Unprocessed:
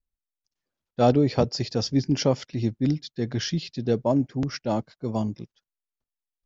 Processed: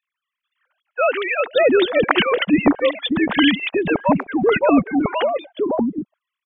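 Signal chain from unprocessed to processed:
three sine waves on the formant tracks
multiband delay without the direct sound highs, lows 570 ms, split 740 Hz
every bin compressed towards the loudest bin 2 to 1
level +7.5 dB

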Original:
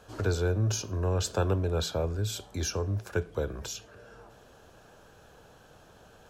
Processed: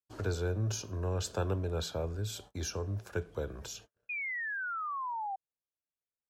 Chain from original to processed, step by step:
noise gate −46 dBFS, range −48 dB
sound drawn into the spectrogram fall, 0:04.09–0:05.36, 760–2,500 Hz −31 dBFS
level −5.5 dB

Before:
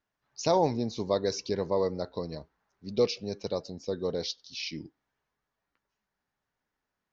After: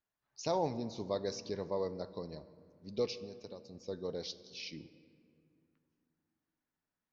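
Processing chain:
0:03.14–0:03.75: downward compressor 10 to 1, threshold −36 dBFS, peak gain reduction 10.5 dB
on a send: convolution reverb RT60 2.4 s, pre-delay 7 ms, DRR 14 dB
on the sum: level −8.5 dB

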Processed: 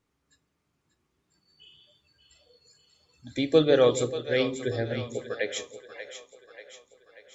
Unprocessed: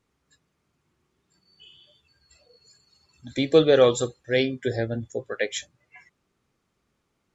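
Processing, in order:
on a send: echo with a time of its own for lows and highs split 490 Hz, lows 153 ms, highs 587 ms, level −10 dB
on the sum: feedback delay network reverb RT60 0.39 s, high-frequency decay 0.95×, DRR 14.5 dB
level −3.5 dB

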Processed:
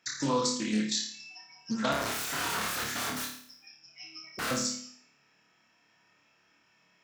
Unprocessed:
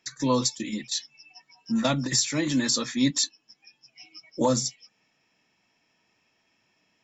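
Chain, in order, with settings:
mains-hum notches 50/100/150/200/250/300/350/400 Hz
downward compressor 6 to 1, threshold −26 dBFS, peak gain reduction 8.5 dB
0:01.92–0:04.51: wrap-around overflow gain 30 dB
high-pass filter 51 Hz
parametric band 1,400 Hz +8 dB 0.52 octaves
flutter between parallel walls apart 4.8 metres, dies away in 0.56 s
highs frequency-modulated by the lows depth 0.22 ms
level −1.5 dB

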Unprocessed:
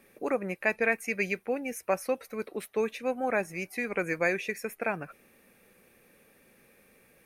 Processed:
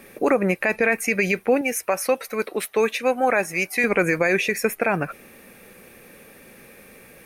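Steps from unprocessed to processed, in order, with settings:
0:01.61–0:03.84: low-shelf EQ 390 Hz −9.5 dB
boost into a limiter +22.5 dB
level −8.5 dB

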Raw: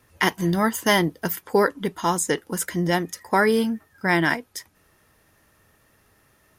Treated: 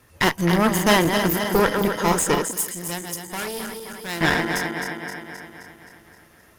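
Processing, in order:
feedback delay that plays each chunk backwards 131 ms, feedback 76%, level −7 dB
asymmetric clip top −27 dBFS
0:02.51–0:04.21: first-order pre-emphasis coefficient 0.8
level +4 dB

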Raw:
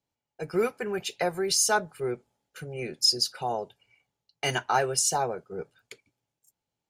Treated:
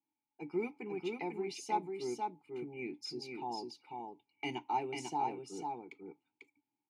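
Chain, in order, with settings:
dynamic equaliser 1,300 Hz, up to −8 dB, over −43 dBFS, Q 1.3
formant filter u
single-tap delay 495 ms −4 dB
level +5.5 dB

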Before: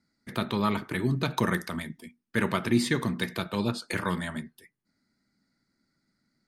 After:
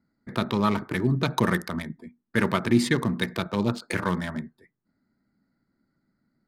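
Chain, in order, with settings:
adaptive Wiener filter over 15 samples
level +3.5 dB

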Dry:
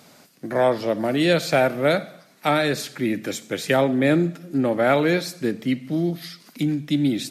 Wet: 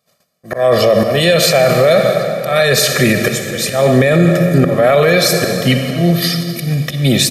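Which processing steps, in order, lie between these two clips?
noise gate −46 dBFS, range −38 dB
high-shelf EQ 11,000 Hz +6 dB
comb filter 1.7 ms, depth 91%
in parallel at +1.5 dB: compressor whose output falls as the input rises −20 dBFS, ratio −0.5
on the sum: volume swells 238 ms
convolution reverb RT60 2.8 s, pre-delay 43 ms, DRR 7.5 dB
boost into a limiter +8.5 dB
level −1 dB

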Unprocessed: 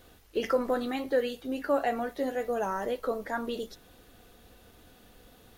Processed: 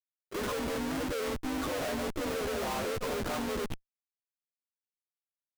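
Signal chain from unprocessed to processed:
partials spread apart or drawn together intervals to 85%
comparator with hysteresis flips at −41.5 dBFS
pitch-shifted copies added +3 semitones −6 dB

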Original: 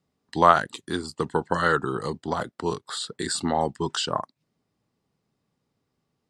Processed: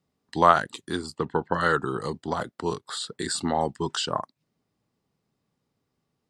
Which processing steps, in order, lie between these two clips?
0:01.18–0:01.61: low-pass filter 3,200 Hz 12 dB per octave
level −1 dB

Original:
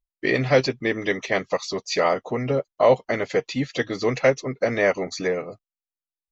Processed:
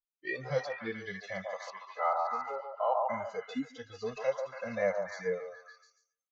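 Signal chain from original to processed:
noise reduction from a noise print of the clip's start 20 dB
0:01.70–0:03.10: loudspeaker in its box 450–2,700 Hz, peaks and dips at 530 Hz −7 dB, 830 Hz +8 dB, 1,300 Hz +6 dB, 2,300 Hz −4 dB
echo through a band-pass that steps 142 ms, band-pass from 810 Hz, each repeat 0.7 octaves, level −1.5 dB
harmonic and percussive parts rebalanced percussive −14 dB
level −6.5 dB

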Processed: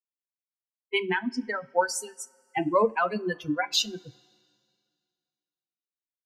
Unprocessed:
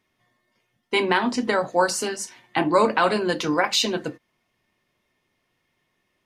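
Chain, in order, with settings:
spectral dynamics exaggerated over time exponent 3
coupled-rooms reverb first 0.26 s, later 2.2 s, from −20 dB, DRR 14.5 dB

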